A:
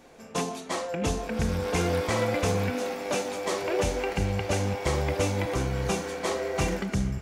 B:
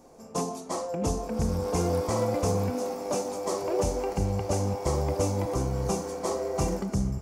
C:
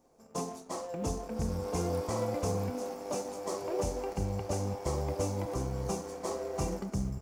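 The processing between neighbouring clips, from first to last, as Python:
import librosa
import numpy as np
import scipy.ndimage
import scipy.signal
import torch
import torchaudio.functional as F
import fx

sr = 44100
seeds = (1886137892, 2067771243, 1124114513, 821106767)

y1 = fx.band_shelf(x, sr, hz=2400.0, db=-12.5, octaves=1.7)
y2 = fx.law_mismatch(y1, sr, coded='A')
y2 = y2 * 10.0 ** (-5.0 / 20.0)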